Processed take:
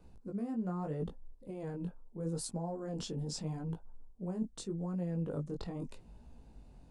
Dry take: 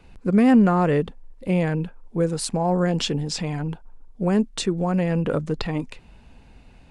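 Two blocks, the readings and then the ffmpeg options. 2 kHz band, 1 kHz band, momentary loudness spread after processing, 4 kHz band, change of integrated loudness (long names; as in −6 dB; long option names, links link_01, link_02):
−26.5 dB, −20.5 dB, 19 LU, −17.5 dB, −17.0 dB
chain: -af "equalizer=frequency=2300:width_type=o:width=1.7:gain=-14.5,areverse,acompressor=threshold=-28dB:ratio=12,areverse,flanger=delay=17:depth=5.4:speed=0.8,volume=-3dB"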